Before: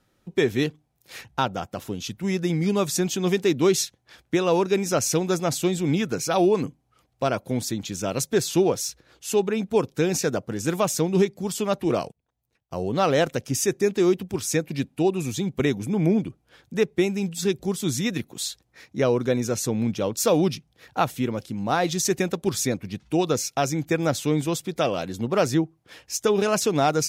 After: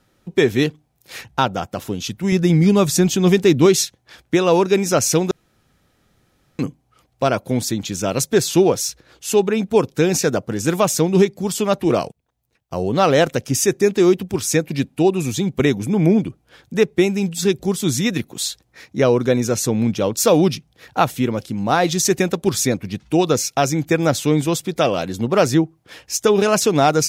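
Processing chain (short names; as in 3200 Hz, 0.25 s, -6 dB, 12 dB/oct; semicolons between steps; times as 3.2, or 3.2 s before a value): 2.32–3.66 low shelf 140 Hz +11 dB; 5.31–6.59 room tone; gain +6 dB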